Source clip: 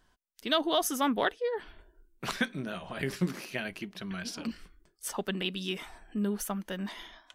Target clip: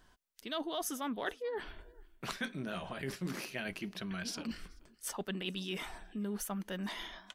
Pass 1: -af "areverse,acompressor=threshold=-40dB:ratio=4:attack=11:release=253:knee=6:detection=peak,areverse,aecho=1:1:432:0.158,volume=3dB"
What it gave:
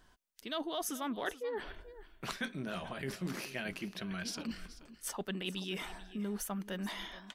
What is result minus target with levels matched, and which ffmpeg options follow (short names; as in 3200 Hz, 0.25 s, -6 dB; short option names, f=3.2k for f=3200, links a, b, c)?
echo-to-direct +11 dB
-af "areverse,acompressor=threshold=-40dB:ratio=4:attack=11:release=253:knee=6:detection=peak,areverse,aecho=1:1:432:0.0447,volume=3dB"